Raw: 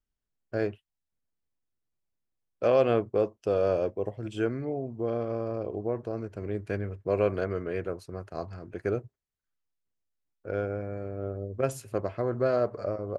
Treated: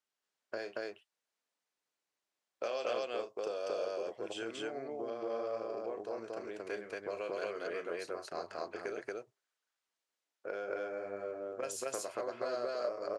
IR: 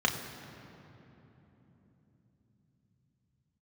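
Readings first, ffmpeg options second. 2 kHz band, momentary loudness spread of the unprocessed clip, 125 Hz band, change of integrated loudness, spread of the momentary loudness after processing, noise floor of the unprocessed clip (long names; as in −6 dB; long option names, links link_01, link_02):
−3.0 dB, 10 LU, −28.0 dB, −9.0 dB, 6 LU, below −85 dBFS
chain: -filter_complex "[0:a]acrossover=split=4100[link_01][link_02];[link_01]acompressor=threshold=-38dB:ratio=6[link_03];[link_03][link_02]amix=inputs=2:normalize=0,highpass=530,lowpass=7800,aecho=1:1:34.99|230.3:0.355|1,volume=4.5dB"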